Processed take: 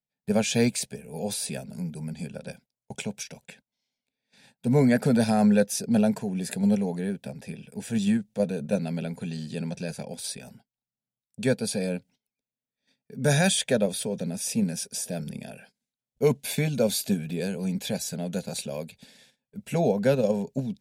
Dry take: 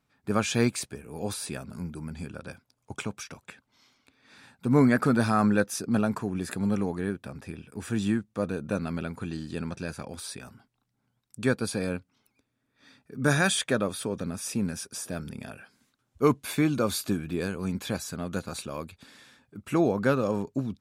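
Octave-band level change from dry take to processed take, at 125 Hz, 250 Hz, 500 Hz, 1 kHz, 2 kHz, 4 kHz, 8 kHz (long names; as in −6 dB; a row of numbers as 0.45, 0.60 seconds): +2.0, +1.5, +3.0, −3.0, −2.5, +3.0, +4.0 decibels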